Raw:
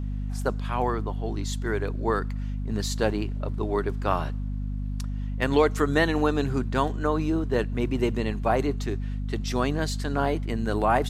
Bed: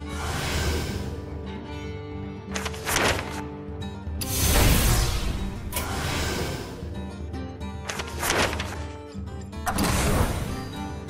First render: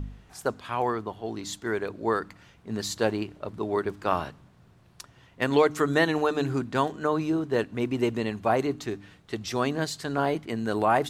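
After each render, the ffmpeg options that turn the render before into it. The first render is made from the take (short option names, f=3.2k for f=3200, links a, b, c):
-af "bandreject=f=50:t=h:w=4,bandreject=f=100:t=h:w=4,bandreject=f=150:t=h:w=4,bandreject=f=200:t=h:w=4,bandreject=f=250:t=h:w=4,bandreject=f=300:t=h:w=4"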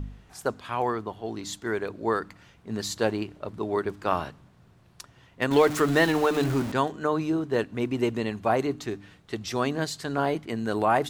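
-filter_complex "[0:a]asettb=1/sr,asplit=3[a][b][c];[a]atrim=end=5.514[d];[b]atrim=start=5.51:end=6.72,asetpts=PTS-STARTPTS,afade=t=in:d=0.004:c=qsin,afade=t=out:st=1.206:d=0.004:c=qsin,aeval=exprs='val(0)+0.5*0.0355*sgn(val(0))':c=same[e];[c]atrim=start=6.716[f];[d][e]acrossfade=d=0.004:c1=hsin:c2=qsin[g];[g][f]acrossfade=d=0.004:c1=qsin:c2=hsin"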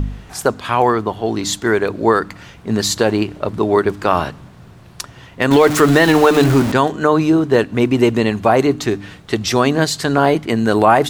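-filter_complex "[0:a]asplit=2[a][b];[b]acompressor=threshold=-33dB:ratio=6,volume=-2.5dB[c];[a][c]amix=inputs=2:normalize=0,alimiter=level_in=11dB:limit=-1dB:release=50:level=0:latency=1"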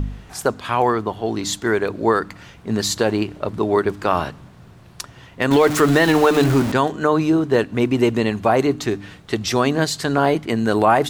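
-af "volume=-3.5dB"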